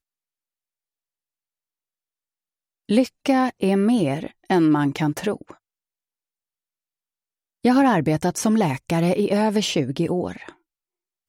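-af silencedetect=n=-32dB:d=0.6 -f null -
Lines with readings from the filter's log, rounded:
silence_start: 0.00
silence_end: 2.89 | silence_duration: 2.89
silence_start: 5.51
silence_end: 7.65 | silence_duration: 2.14
silence_start: 10.49
silence_end: 11.29 | silence_duration: 0.80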